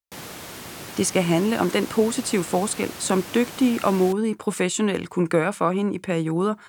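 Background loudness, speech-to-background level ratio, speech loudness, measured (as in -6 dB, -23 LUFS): -36.5 LUFS, 13.5 dB, -23.0 LUFS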